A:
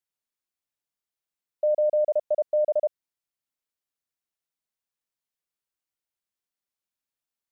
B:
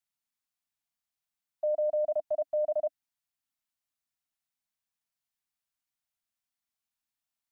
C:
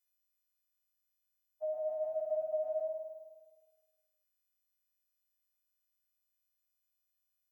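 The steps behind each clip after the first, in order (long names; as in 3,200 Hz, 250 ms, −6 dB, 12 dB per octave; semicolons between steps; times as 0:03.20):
elliptic band-stop filter 290–640 Hz
every partial snapped to a pitch grid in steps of 3 semitones; flutter between parallel walls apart 8.9 metres, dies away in 1.4 s; level −7.5 dB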